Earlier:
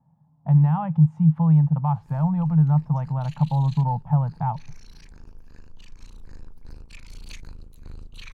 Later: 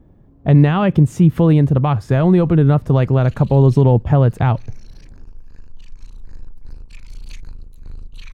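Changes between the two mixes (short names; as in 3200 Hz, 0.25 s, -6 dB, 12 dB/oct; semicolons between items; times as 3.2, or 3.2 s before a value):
speech: remove double band-pass 370 Hz, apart 2.5 oct; master: add low shelf 68 Hz +9 dB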